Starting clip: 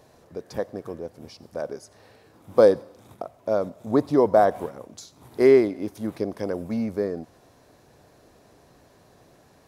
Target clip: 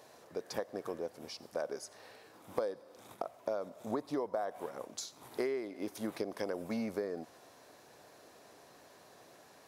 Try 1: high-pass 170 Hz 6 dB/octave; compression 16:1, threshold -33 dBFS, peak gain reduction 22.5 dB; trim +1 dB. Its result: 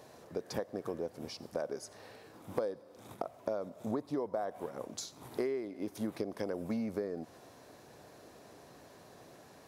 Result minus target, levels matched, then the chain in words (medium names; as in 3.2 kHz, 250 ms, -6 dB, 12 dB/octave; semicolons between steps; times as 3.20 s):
125 Hz band +4.5 dB
high-pass 590 Hz 6 dB/octave; compression 16:1, threshold -33 dBFS, peak gain reduction 19.5 dB; trim +1 dB